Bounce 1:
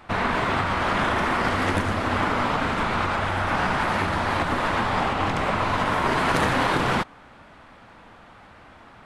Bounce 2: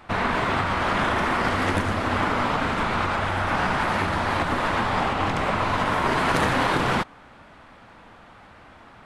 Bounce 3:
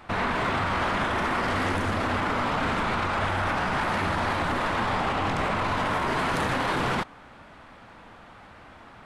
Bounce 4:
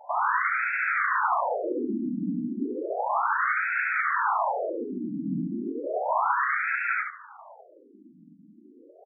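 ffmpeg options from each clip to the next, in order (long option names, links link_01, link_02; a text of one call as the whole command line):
ffmpeg -i in.wav -af anull out.wav
ffmpeg -i in.wav -af "alimiter=limit=-18dB:level=0:latency=1:release=13" out.wav
ffmpeg -i in.wav -filter_complex "[0:a]asplit=2[link_01][link_02];[link_02]aecho=0:1:71|142|213:0.473|0.109|0.025[link_03];[link_01][link_03]amix=inputs=2:normalize=0,afftfilt=real='re*between(b*sr/1024,220*pow(1900/220,0.5+0.5*sin(2*PI*0.33*pts/sr))/1.41,220*pow(1900/220,0.5+0.5*sin(2*PI*0.33*pts/sr))*1.41)':imag='im*between(b*sr/1024,220*pow(1900/220,0.5+0.5*sin(2*PI*0.33*pts/sr))/1.41,220*pow(1900/220,0.5+0.5*sin(2*PI*0.33*pts/sr))*1.41)':win_size=1024:overlap=0.75,volume=4.5dB" out.wav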